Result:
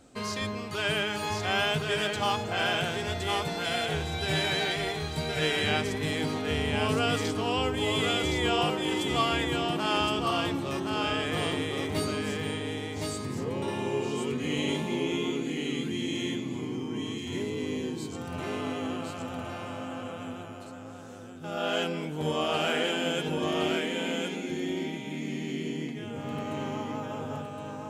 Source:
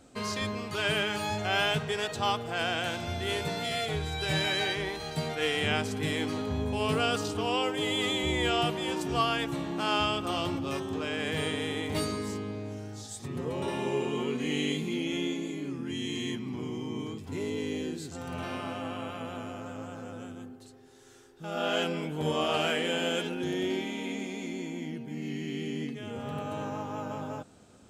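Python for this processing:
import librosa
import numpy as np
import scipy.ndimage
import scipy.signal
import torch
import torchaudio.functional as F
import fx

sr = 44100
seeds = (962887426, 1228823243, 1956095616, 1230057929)

y = x + 10.0 ** (-3.5 / 20.0) * np.pad(x, (int(1066 * sr / 1000.0), 0))[:len(x)]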